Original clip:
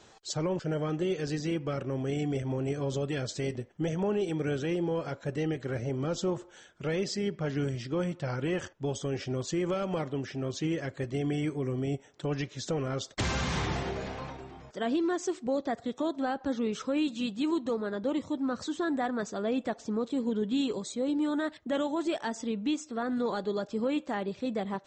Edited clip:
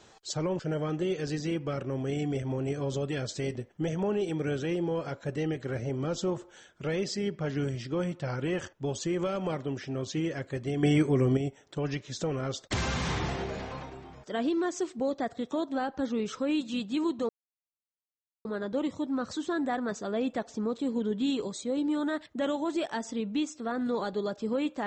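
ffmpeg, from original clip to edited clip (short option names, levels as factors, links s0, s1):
-filter_complex "[0:a]asplit=5[s0][s1][s2][s3][s4];[s0]atrim=end=8.982[s5];[s1]atrim=start=9.448:end=11.302[s6];[s2]atrim=start=11.298:end=11.842,asetpts=PTS-STARTPTS,volume=2.37[s7];[s3]atrim=start=11.838:end=17.76,asetpts=PTS-STARTPTS,afade=t=out:st=5.918:d=0.004:c=hsin,apad=pad_dur=1.16[s8];[s4]atrim=start=17.76,asetpts=PTS-STARTPTS,afade=t=in:d=0.004:c=hsin[s9];[s5][s6]acrossfade=d=0.004:c1=hsin:c2=hsin[s10];[s10][s7]acrossfade=d=0.004:c1=hsin:c2=hsin[s11];[s8][s9]concat=n=2:v=0:a=1[s12];[s11][s12]acrossfade=d=0.004:c1=hsin:c2=hsin"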